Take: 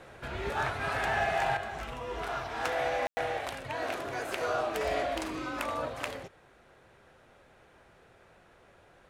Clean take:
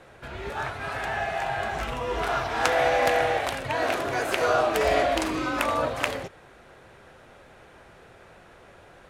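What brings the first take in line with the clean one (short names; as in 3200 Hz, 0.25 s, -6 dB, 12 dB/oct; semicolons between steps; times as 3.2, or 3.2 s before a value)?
clip repair -21.5 dBFS; room tone fill 3.07–3.17; gain correction +8.5 dB, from 1.57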